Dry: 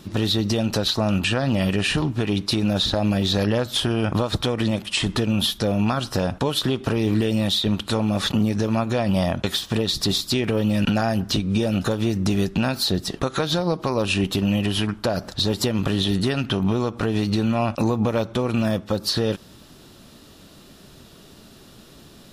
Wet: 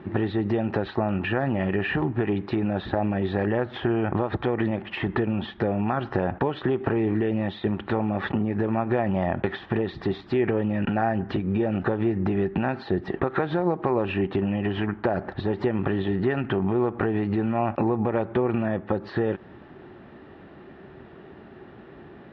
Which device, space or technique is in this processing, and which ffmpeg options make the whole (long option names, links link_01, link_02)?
bass amplifier: -af "acompressor=threshold=-23dB:ratio=4,highpass=60,equalizer=frequency=370:width_type=q:width=4:gain=9,equalizer=frequency=800:width_type=q:width=4:gain=8,equalizer=frequency=1800:width_type=q:width=4:gain=7,lowpass=frequency=2300:width=0.5412,lowpass=frequency=2300:width=1.3066"